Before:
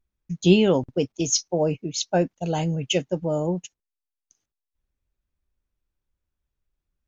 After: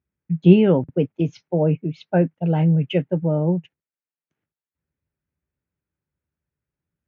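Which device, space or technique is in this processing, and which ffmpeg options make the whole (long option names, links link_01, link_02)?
bass cabinet: -af "highpass=frequency=75:width=0.5412,highpass=frequency=75:width=1.3066,equalizer=frequency=160:width_type=q:width=4:gain=7,equalizer=frequency=720:width_type=q:width=4:gain=-4,equalizer=frequency=1100:width_type=q:width=4:gain=-5,lowpass=frequency=2300:width=0.5412,lowpass=frequency=2300:width=1.3066,volume=2.5dB"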